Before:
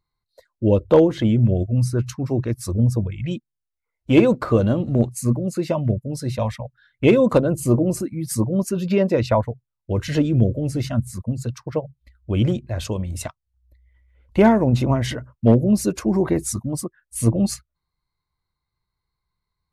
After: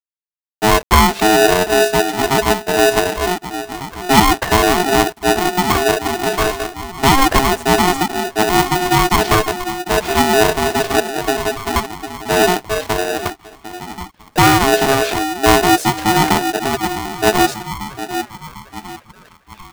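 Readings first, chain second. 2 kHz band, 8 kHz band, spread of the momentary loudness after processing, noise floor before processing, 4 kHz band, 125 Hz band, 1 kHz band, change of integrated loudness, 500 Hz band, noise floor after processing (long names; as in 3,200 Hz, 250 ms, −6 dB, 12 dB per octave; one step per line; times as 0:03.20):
+17.5 dB, +11.0 dB, 14 LU, −83 dBFS, +18.0 dB, −3.5 dB, +17.5 dB, +5.5 dB, +5.0 dB, −50 dBFS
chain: phase distortion by the signal itself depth 0.14 ms
low-pass that shuts in the quiet parts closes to 820 Hz, open at −14 dBFS
in parallel at +2.5 dB: brickwall limiter −13.5 dBFS, peak gain reduction 9 dB
on the sum: centre clipping without the shift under −30 dBFS
on a send: echo through a band-pass that steps 749 ms, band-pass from 210 Hz, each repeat 0.7 octaves, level −7.5 dB
on the sum: ring modulator with a square carrier 540 Hz
level −1 dB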